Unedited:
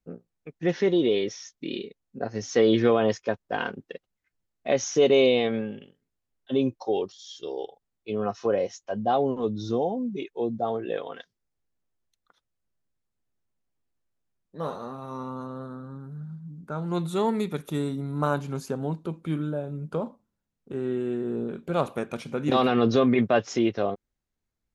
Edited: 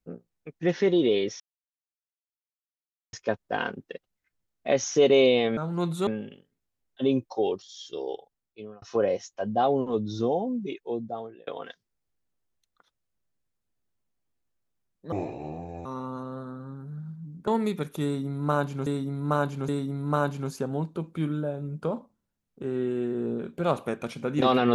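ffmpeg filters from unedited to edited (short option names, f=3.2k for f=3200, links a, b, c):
-filter_complex "[0:a]asplit=12[a][b][c][d][e][f][g][h][i][j][k][l];[a]atrim=end=1.4,asetpts=PTS-STARTPTS,afade=t=out:st=1.396:d=0.004:c=hsin[m];[b]atrim=start=1.4:end=3.13,asetpts=PTS-STARTPTS,volume=0[n];[c]atrim=start=3.13:end=5.572,asetpts=PTS-STARTPTS,afade=t=in:d=0.004:c=hsin[o];[d]atrim=start=16.708:end=17.212[p];[e]atrim=start=5.568:end=8.32,asetpts=PTS-STARTPTS,afade=t=out:st=2.072:d=0.68[q];[f]atrim=start=8.32:end=10.97,asetpts=PTS-STARTPTS,afade=t=in:d=0.004:c=hsin,afade=t=out:st=1.57:d=1.08:c=qsin[r];[g]atrim=start=10.97:end=14.624,asetpts=PTS-STARTPTS,afade=t=in:d=0.004:c=hsin[s];[h]atrim=start=14.62:end=15.09,asetpts=PTS-STARTPTS,asetrate=28224,aresample=44100[t];[i]atrim=start=15.086:end=16.712[u];[j]atrim=start=17.208:end=18.602[v];[k]atrim=start=17.778:end=18.602[w];[l]atrim=start=17.778[x];[m][n][o]concat=n=3:v=0:a=1[y];[y][p]acrossfade=d=0.004:c1=hsin:c2=hsin[z];[q][r][s]concat=n=3:v=0:a=1[aa];[z][aa]acrossfade=d=0.004:c1=hsin:c2=hsin[ab];[ab][t]acrossfade=d=0.004:c1=hsin:c2=hsin[ac];[ac][u]acrossfade=d=0.004:c1=hsin:c2=hsin[ad];[ad][v]acrossfade=d=0.004:c1=hsin:c2=hsin[ae];[ae][w]acrossfade=d=0.004:c1=hsin:c2=hsin[af];[af][x]acrossfade=d=0.004:c1=hsin:c2=hsin"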